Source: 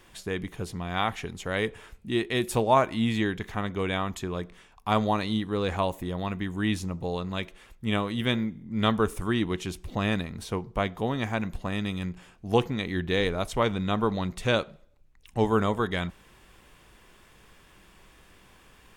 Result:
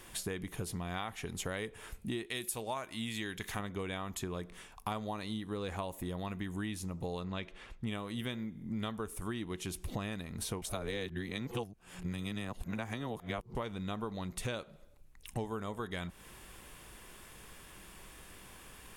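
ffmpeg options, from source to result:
ffmpeg -i in.wav -filter_complex "[0:a]asettb=1/sr,asplit=3[link_01][link_02][link_03];[link_01]atrim=end=2.264[link_04];[link_02]atrim=start=2.26:end=3.59,asetpts=PTS-STARTPTS,afade=type=in:duration=0.004:curve=qsin,afade=type=out:start_time=1.326:duration=0.004:curve=qsin,tiltshelf=frequency=1500:gain=-5[link_05];[link_03]atrim=start=3.586[link_06];[link_04][link_05]acrossfade=duration=0.004:curve1=hsin:curve2=qsin[link_07];[link_07][link_06]acrossfade=duration=0.004:curve1=qsin:curve2=hsin,asettb=1/sr,asplit=3[link_08][link_09][link_10];[link_08]atrim=end=7.244[link_11];[link_09]atrim=start=7.24:end=7.87,asetpts=PTS-STARTPTS,afade=type=in:duration=0.004:curve=qsin,afade=type=out:start_time=0.626:duration=0.004:curve=qsin,lowpass=4300[link_12];[link_10]atrim=start=7.866[link_13];[link_11][link_12]acrossfade=duration=0.004:curve1=hsin:curve2=qsin[link_14];[link_14][link_13]acrossfade=duration=0.004:curve1=qsin:curve2=hsin,asplit=3[link_15][link_16][link_17];[link_15]atrim=end=10.622[link_18];[link_16]atrim=start=10.618:end=13.552,asetpts=PTS-STARTPTS,areverse[link_19];[link_17]atrim=start=13.548[link_20];[link_18][link_19]acrossfade=duration=0.004:curve1=hsin:curve2=hsin[link_21];[link_21][link_20]acrossfade=duration=0.004:curve1=hsin:curve2=hsin,equalizer=frequency=11000:width=0.95:gain=10.5,acompressor=threshold=-36dB:ratio=12,volume=1.5dB" out.wav

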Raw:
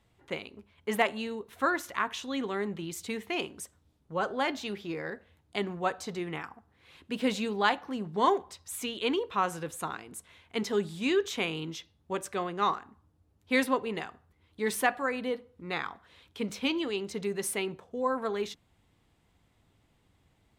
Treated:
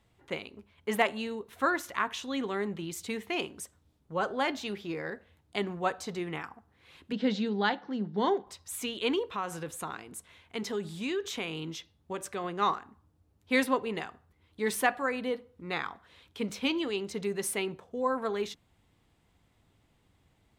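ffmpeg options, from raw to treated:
ffmpeg -i in.wav -filter_complex "[0:a]asettb=1/sr,asplit=3[link_01][link_02][link_03];[link_01]atrim=end=7.124[link_04];[link_02]atrim=start=7.12:end=8.47,asetpts=PTS-STARTPTS,afade=type=in:duration=0.004:curve=qsin,afade=type=out:start_time=1.346:duration=0.004:curve=qsin,highpass=150,equalizer=frequency=200:width_type=q:width=4:gain=6,equalizer=frequency=640:width_type=q:width=4:gain=-4,equalizer=frequency=1100:width_type=q:width=4:gain=-9,equalizer=frequency=2500:width_type=q:width=4:gain=-9,lowpass=frequency=5100:width=0.5412,lowpass=frequency=5100:width=1.3066[link_05];[link_03]atrim=start=8.466[link_06];[link_04][link_05]acrossfade=duration=0.004:curve1=hsin:curve2=qsin[link_07];[link_07][link_06]acrossfade=duration=0.004:curve1=qsin:curve2=hsin,asettb=1/sr,asplit=3[link_08][link_09][link_10];[link_08]atrim=end=9.314[link_11];[link_09]atrim=start=9.31:end=12.44,asetpts=PTS-STARTPTS,afade=type=in:duration=0.004:curve=qsin,afade=type=out:start_time=3.126:duration=0.004:curve=qsin,acompressor=threshold=-33dB:ratio=2:attack=3.2:release=140:knee=1:detection=peak[link_12];[link_10]atrim=start=12.436[link_13];[link_11][link_12]acrossfade=duration=0.004:curve1=hsin:curve2=qsin[link_14];[link_14][link_13]acrossfade=duration=0.004:curve1=qsin:curve2=hsin" out.wav

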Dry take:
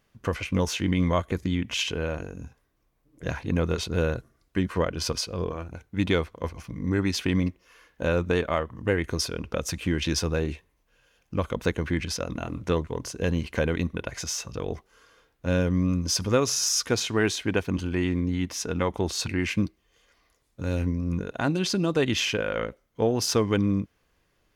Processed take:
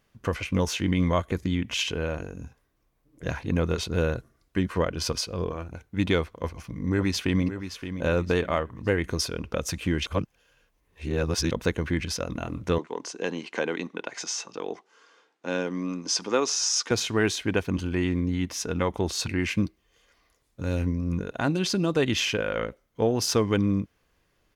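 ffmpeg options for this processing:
ffmpeg -i in.wav -filter_complex "[0:a]asplit=2[link_01][link_02];[link_02]afade=type=in:start_time=6.3:duration=0.01,afade=type=out:start_time=7.44:duration=0.01,aecho=0:1:570|1140|1710:0.316228|0.0948683|0.0284605[link_03];[link_01][link_03]amix=inputs=2:normalize=0,asettb=1/sr,asplit=3[link_04][link_05][link_06];[link_04]atrim=end=12.784[link_07];[link_05]atrim=start=12.78:end=16.91,asetpts=PTS-STARTPTS,afade=type=in:duration=0.004:curve=qsin,afade=type=out:start_time=4.126:duration=0.004:curve=qsin,highpass=frequency=230:width=0.5412,highpass=frequency=230:width=1.3066,equalizer=frequency=240:width_type=q:width=4:gain=-4,equalizer=frequency=570:width_type=q:width=4:gain=-4,equalizer=frequency=840:width_type=q:width=4:gain=5,lowpass=frequency=8000:width=0.5412,lowpass=frequency=8000:width=1.3066[link_08];[link_06]atrim=start=16.906[link_09];[link_07][link_08]acrossfade=duration=0.004:curve1=hsin:curve2=qsin[link_10];[link_10][link_09]acrossfade=duration=0.004:curve1=qsin:curve2=hsin,asplit=3[link_11][link_12][link_13];[link_11]atrim=end=10.062[link_14];[link_12]atrim=start=10.058:end=11.512,asetpts=PTS-STARTPTS,areverse[link_15];[link_13]atrim=start=11.508[link_16];[link_14][link_15]acrossfade=duration=0.004:curve1=hsin:curve2=hsin[link_17];[link_17][link_16]acrossfade=duration=0.004:curve1=hsin:curve2=hsin" out.wav

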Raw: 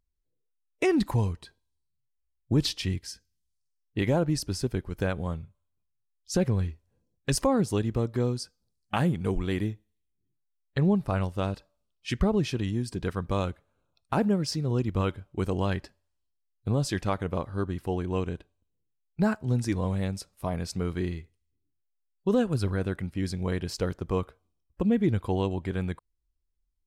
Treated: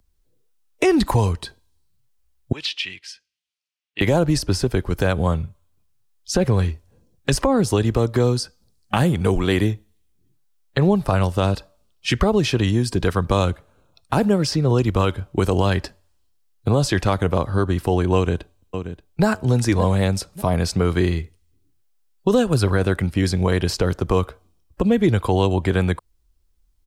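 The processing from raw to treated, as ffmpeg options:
ffmpeg -i in.wav -filter_complex "[0:a]asettb=1/sr,asplit=3[link_01][link_02][link_03];[link_01]atrim=end=2.524[link_04];[link_02]atrim=start=2.52:end=4.01,asetpts=PTS-STARTPTS,afade=type=in:duration=0.004:curve=qsin,afade=type=out:start_time=1.486:duration=0.004:curve=qsin,bandpass=frequency=2600:width_type=q:width=2.5[link_05];[link_03]atrim=start=4.006[link_06];[link_04][link_05]acrossfade=duration=0.004:curve1=hsin:curve2=qsin[link_07];[link_07][link_06]acrossfade=duration=0.004:curve1=qsin:curve2=hsin,asplit=2[link_08][link_09];[link_09]afade=type=in:start_time=18.15:duration=0.01,afade=type=out:start_time=19.25:duration=0.01,aecho=0:1:580|1160:0.211349|0.0422698[link_10];[link_08][link_10]amix=inputs=2:normalize=0,equalizer=frequency=2100:width_type=o:width=0.77:gain=-2.5,acrossover=split=100|380|3200[link_11][link_12][link_13][link_14];[link_11]acompressor=threshold=-38dB:ratio=4[link_15];[link_12]acompressor=threshold=-38dB:ratio=4[link_16];[link_13]acompressor=threshold=-33dB:ratio=4[link_17];[link_14]acompressor=threshold=-44dB:ratio=4[link_18];[link_15][link_16][link_17][link_18]amix=inputs=4:normalize=0,alimiter=level_in=21.5dB:limit=-1dB:release=50:level=0:latency=1,volume=-6dB" out.wav

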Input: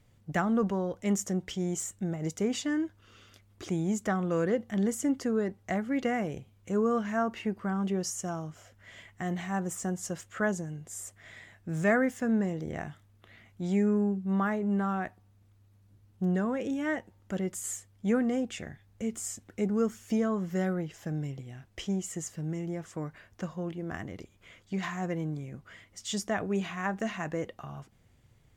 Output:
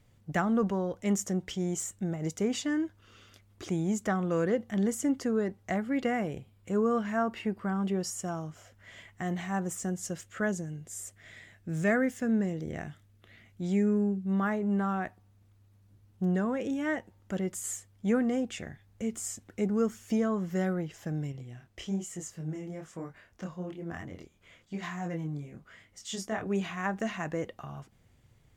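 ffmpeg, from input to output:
ffmpeg -i in.wav -filter_complex "[0:a]asettb=1/sr,asplit=3[link_01][link_02][link_03];[link_01]atrim=end=5.764[link_04];[link_02]atrim=start=5.76:end=8.36,asetpts=PTS-STARTPTS,afade=type=in:duration=0.004:curve=qsin,afade=type=out:start_time=2.596:duration=0.004:curve=qsin,bandreject=frequency=6200:width=7.4[link_05];[link_03]atrim=start=8.356[link_06];[link_04][link_05]acrossfade=duration=0.004:curve1=hsin:curve2=qsin[link_07];[link_07][link_06]acrossfade=duration=0.004:curve1=qsin:curve2=hsin,asettb=1/sr,asplit=3[link_08][link_09][link_10];[link_08]atrim=end=9.724[link_11];[link_09]atrim=start=9.72:end=14.43,asetpts=PTS-STARTPTS,afade=type=in:duration=0.004:curve=qsin,afade=type=out:start_time=4.706:duration=0.004:curve=qsin,equalizer=frequency=950:width_type=o:width=1:gain=-6[link_12];[link_10]atrim=start=14.426[link_13];[link_11][link_12]acrossfade=duration=0.004:curve1=hsin:curve2=qsin[link_14];[link_14][link_13]acrossfade=duration=0.004:curve1=qsin:curve2=hsin,asettb=1/sr,asplit=3[link_15][link_16][link_17];[link_15]atrim=end=21.324[link_18];[link_16]atrim=start=21.32:end=26.47,asetpts=PTS-STARTPTS,afade=type=in:duration=0.004:curve=qsin,afade=type=out:start_time=5.146:duration=0.004:curve=qsin,flanger=delay=22.5:depth=5:speed=1.1[link_19];[link_17]atrim=start=26.466[link_20];[link_18][link_19]acrossfade=duration=0.004:curve1=hsin:curve2=qsin[link_21];[link_21][link_20]acrossfade=duration=0.004:curve1=qsin:curve2=hsin" out.wav

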